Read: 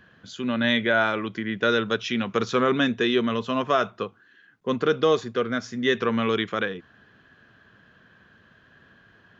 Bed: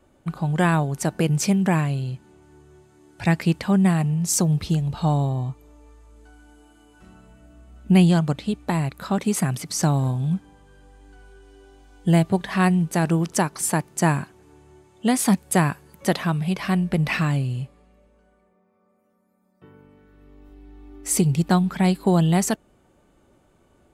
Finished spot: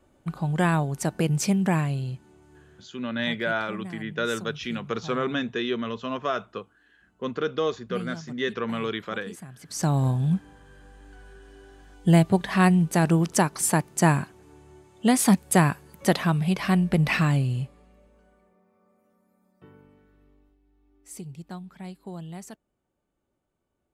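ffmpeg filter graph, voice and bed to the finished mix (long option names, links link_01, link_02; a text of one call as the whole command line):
ffmpeg -i stem1.wav -i stem2.wav -filter_complex "[0:a]adelay=2550,volume=-5.5dB[link_01];[1:a]volume=17dB,afade=type=out:start_time=2.59:duration=0.46:silence=0.141254,afade=type=in:start_time=9.57:duration=0.49:silence=0.1,afade=type=out:start_time=19.4:duration=1.18:silence=0.1[link_02];[link_01][link_02]amix=inputs=2:normalize=0" out.wav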